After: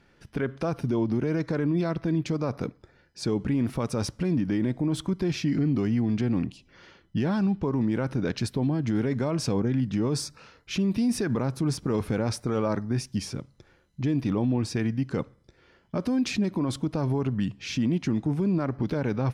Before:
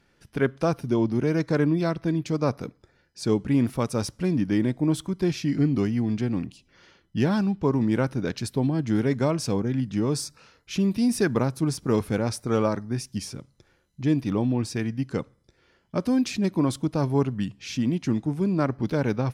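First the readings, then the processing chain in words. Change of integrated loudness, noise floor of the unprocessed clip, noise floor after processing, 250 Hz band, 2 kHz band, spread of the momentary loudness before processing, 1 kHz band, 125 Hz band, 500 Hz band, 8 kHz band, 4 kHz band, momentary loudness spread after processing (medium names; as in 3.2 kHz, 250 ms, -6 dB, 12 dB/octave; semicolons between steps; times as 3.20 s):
-2.0 dB, -66 dBFS, -62 dBFS, -1.5 dB, -3.0 dB, 8 LU, -3.5 dB, -1.0 dB, -3.5 dB, -2.0 dB, -0.5 dB, 6 LU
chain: treble shelf 6.2 kHz -10 dB; peak limiter -22 dBFS, peak gain reduction 11.5 dB; trim +4 dB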